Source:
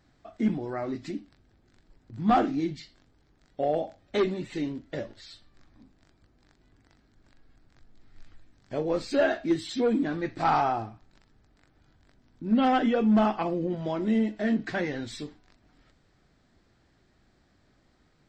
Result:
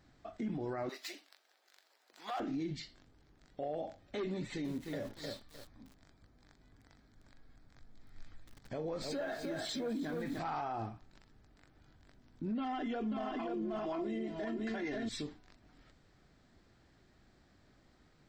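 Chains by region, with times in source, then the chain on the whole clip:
0.89–2.40 s: median filter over 5 samples + high-pass 550 Hz 24 dB/octave + treble shelf 2.9 kHz +11.5 dB
4.34–10.39 s: peaking EQ 350 Hz -6 dB 0.22 oct + band-stop 2.8 kHz, Q 8.4 + bit-crushed delay 305 ms, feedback 35%, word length 8-bit, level -7.5 dB
12.58–15.09 s: comb 2.9 ms, depth 72% + delay 534 ms -3.5 dB
whole clip: compression, threshold -27 dBFS; peak limiter -30 dBFS; trim -1 dB

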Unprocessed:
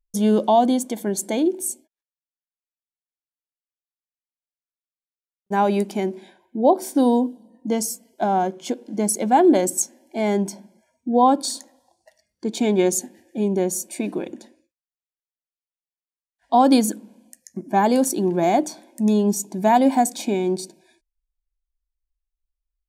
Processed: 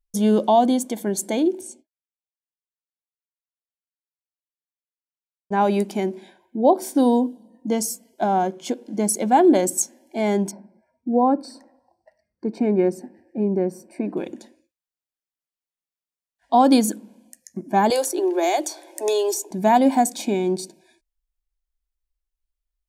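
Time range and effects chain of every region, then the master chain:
1.61–5.61 s: expander -50 dBFS + distance through air 99 m
10.51–14.17 s: dynamic bell 970 Hz, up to -5 dB, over -34 dBFS, Q 1.7 + boxcar filter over 13 samples
17.90–19.51 s: steep high-pass 320 Hz 72 dB/octave + three bands compressed up and down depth 100%
whole clip: none

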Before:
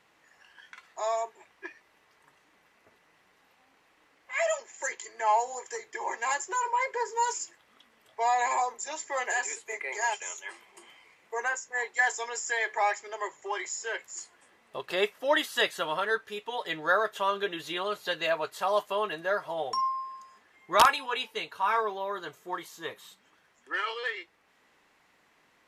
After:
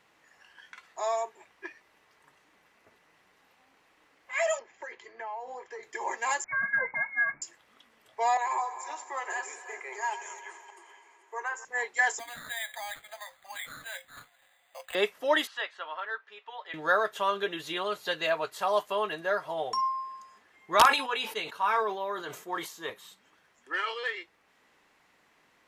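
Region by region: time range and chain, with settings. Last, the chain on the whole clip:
4.59–5.83 s: compression, threshold -34 dBFS + distance through air 260 m
6.44–7.42 s: frequency inversion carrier 2.6 kHz + peaking EQ 440 Hz -10.5 dB 0.36 oct
8.37–11.65 s: chunks repeated in reverse 292 ms, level -13 dB + rippled Chebyshev high-pass 270 Hz, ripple 9 dB + multi-head delay 85 ms, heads first and third, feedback 69%, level -18.5 dB
12.19–14.95 s: compression 3:1, threshold -31 dBFS + rippled Chebyshev high-pass 510 Hz, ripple 9 dB + careless resampling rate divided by 8×, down none, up hold
15.47–16.74 s: high-pass 970 Hz + tape spacing loss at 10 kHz 32 dB + tape noise reduction on one side only encoder only
20.82–22.90 s: high-pass 150 Hz + decay stretcher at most 96 dB/s
whole clip: none

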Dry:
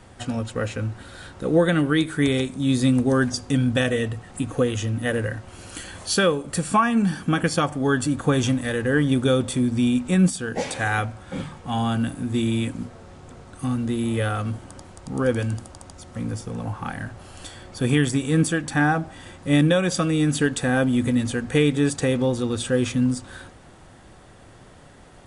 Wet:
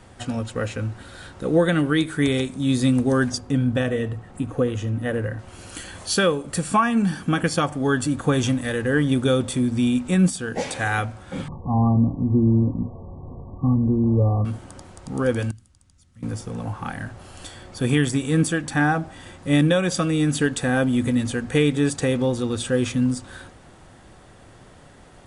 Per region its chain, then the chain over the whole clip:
3.38–5.39 s: treble shelf 2.2 kHz -10.5 dB + delay 72 ms -20.5 dB
11.48–14.45 s: brick-wall FIR low-pass 1.2 kHz + bass shelf 230 Hz +9.5 dB
15.51–16.23 s: amplifier tone stack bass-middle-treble 6-0-2 + band-stop 390 Hz, Q 6.7
whole clip: none

